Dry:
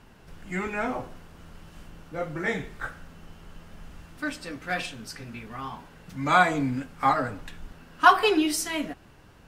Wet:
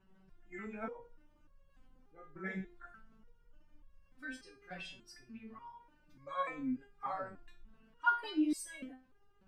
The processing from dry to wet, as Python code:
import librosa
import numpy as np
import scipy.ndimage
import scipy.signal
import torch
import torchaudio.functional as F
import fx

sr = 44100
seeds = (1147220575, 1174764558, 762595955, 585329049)

y = fx.envelope_sharpen(x, sr, power=1.5)
y = fx.resonator_held(y, sr, hz=3.4, low_hz=190.0, high_hz=550.0)